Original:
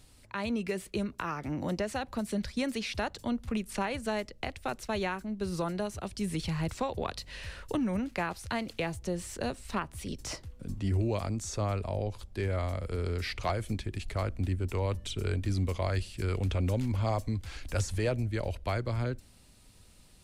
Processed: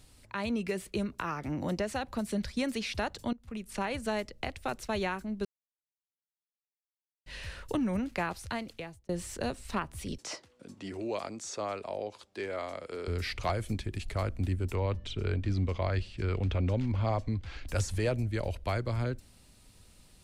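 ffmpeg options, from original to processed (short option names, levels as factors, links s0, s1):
-filter_complex "[0:a]asettb=1/sr,asplit=3[s0][s1][s2];[s0]atrim=end=10.184[s3];[s1]atrim=start=10.18:end=13.08,asetpts=PTS-STARTPTS,afade=t=in:d=0.004:c=qsin,afade=t=out:st=2.896:d=0.004:c=qsin,highpass=330,lowpass=7900[s4];[s2]atrim=start=13.076[s5];[s3][s4]acrossfade=d=0.004:c1=hsin:c2=qsin[s6];[s6][s5]acrossfade=d=0.004:c1=qsin:c2=hsin,asettb=1/sr,asplit=3[s7][s8][s9];[s7]atrim=end=14.754[s10];[s8]atrim=start=14.75:end=17.68,asetpts=PTS-STARTPTS,afade=t=in:d=0.004:c=qsin,afade=t=out:st=2.926:d=0.004:c=qsin,lowpass=4100[s11];[s9]atrim=start=17.676[s12];[s10][s11]acrossfade=d=0.004:c1=hsin:c2=qsin[s13];[s13][s12]acrossfade=d=0.004:c1=qsin:c2=hsin,asplit=5[s14][s15][s16][s17][s18];[s14]atrim=end=3.33,asetpts=PTS-STARTPTS,afade=t=out:st=3.326:d=0.004:c=hsin:silence=0.0749894[s19];[s15]atrim=start=3.33:end=5.45,asetpts=PTS-STARTPTS,afade=t=in:d=0.59:silence=0.0749894,afade=t=out:st=2.116:d=0.004:c=hsin[s20];[s16]atrim=start=5.45:end=7.26,asetpts=PTS-STARTPTS,volume=0[s21];[s17]atrim=start=7.26:end=9.09,asetpts=PTS-STARTPTS,afade=t=in:d=0.004:c=hsin,afade=t=out:st=1.11:d=0.72[s22];[s18]atrim=start=9.09,asetpts=PTS-STARTPTS,afade=t=in:d=0.004:c=hsin[s23];[s19][s20][s21][s22][s23]concat=n=5:v=0:a=1"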